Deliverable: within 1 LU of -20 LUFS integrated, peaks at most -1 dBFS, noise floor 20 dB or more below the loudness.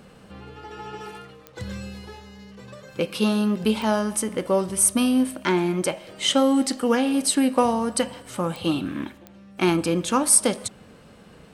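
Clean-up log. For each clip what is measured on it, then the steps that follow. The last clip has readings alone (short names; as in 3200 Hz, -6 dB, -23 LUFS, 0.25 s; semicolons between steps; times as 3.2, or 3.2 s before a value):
clicks 4; loudness -22.0 LUFS; peak -4.5 dBFS; loudness target -20.0 LUFS
-> de-click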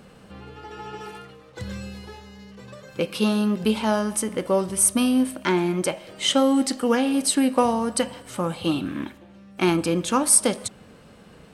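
clicks 0; loudness -22.0 LUFS; peak -4.5 dBFS; loudness target -20.0 LUFS
-> gain +2 dB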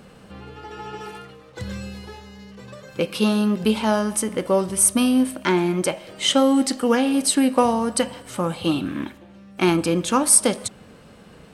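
loudness -20.0 LUFS; peak -2.5 dBFS; noise floor -47 dBFS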